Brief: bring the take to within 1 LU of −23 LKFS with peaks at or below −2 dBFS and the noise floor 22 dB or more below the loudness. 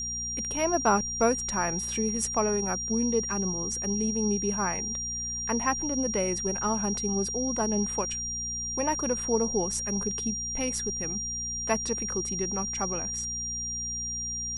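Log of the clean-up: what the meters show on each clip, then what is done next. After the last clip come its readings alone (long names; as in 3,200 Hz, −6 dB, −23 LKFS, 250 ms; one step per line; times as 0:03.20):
mains hum 60 Hz; hum harmonics up to 240 Hz; level of the hum −40 dBFS; interfering tone 5,700 Hz; level of the tone −31 dBFS; integrated loudness −28.0 LKFS; sample peak −11.0 dBFS; target loudness −23.0 LKFS
→ hum removal 60 Hz, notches 4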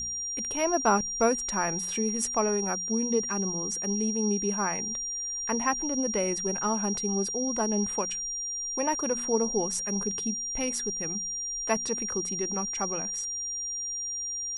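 mains hum none found; interfering tone 5,700 Hz; level of the tone −31 dBFS
→ notch filter 5,700 Hz, Q 30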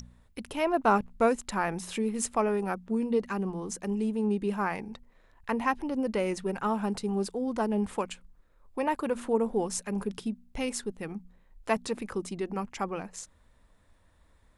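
interfering tone none found; integrated loudness −30.5 LKFS; sample peak −11.5 dBFS; target loudness −23.0 LKFS
→ level +7.5 dB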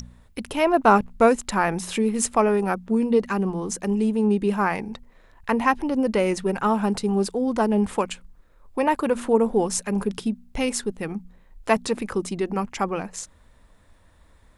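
integrated loudness −23.0 LKFS; sample peak −4.0 dBFS; background noise floor −55 dBFS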